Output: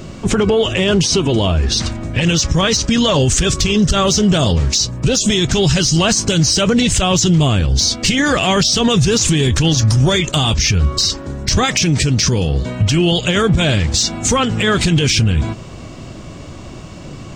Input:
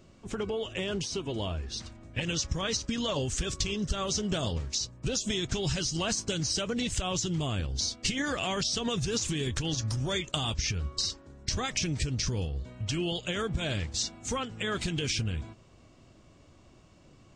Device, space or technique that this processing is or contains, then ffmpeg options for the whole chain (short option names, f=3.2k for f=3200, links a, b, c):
mastering chain: -filter_complex "[0:a]asettb=1/sr,asplit=3[a][b][c];[a]atrim=end=11.634[d];[b]atrim=start=11.63:end=12.82,asetpts=PTS-STARTPTS,afade=t=in:d=0.004:c=qsin,afade=t=out:st=1.186:d=0.004:c=qsin,highpass=f=140:p=1[e];[c]atrim=start=12.816[f];[d][e]acrossfade=d=0.004:c1=hsin:c2=qsin[g];[g][f]acrossfade=d=0.004:c1=qsin:c2=hsin,equalizer=f=160:t=o:w=0.77:g=3.5,acompressor=threshold=-35dB:ratio=1.5,asoftclip=type=tanh:threshold=-21.5dB,alimiter=level_in=29.5dB:limit=-1dB:release=50:level=0:latency=1,volume=-5.5dB"